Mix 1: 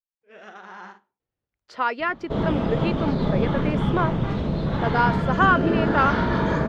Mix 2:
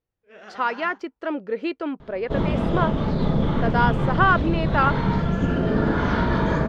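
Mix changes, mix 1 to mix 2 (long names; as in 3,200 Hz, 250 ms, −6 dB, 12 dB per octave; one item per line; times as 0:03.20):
speech: entry −1.20 s
master: add low-shelf EQ 60 Hz +7.5 dB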